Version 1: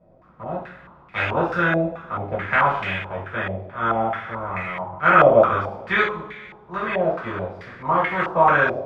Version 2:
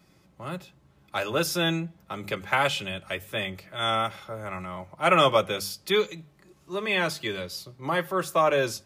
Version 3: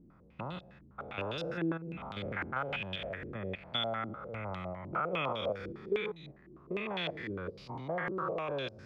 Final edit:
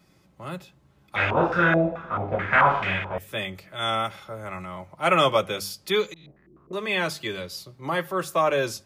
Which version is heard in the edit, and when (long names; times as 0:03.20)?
2
0:01.16–0:03.18: punch in from 1
0:06.14–0:06.73: punch in from 3